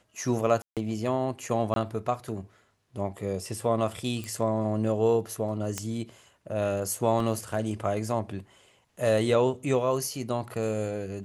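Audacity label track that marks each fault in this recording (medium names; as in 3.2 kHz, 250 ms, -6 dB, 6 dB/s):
0.620000	0.770000	dropout 147 ms
1.740000	1.760000	dropout 22 ms
4.240000	4.240000	pop -22 dBFS
5.780000	5.780000	pop -14 dBFS
7.200000	7.200000	dropout 2.7 ms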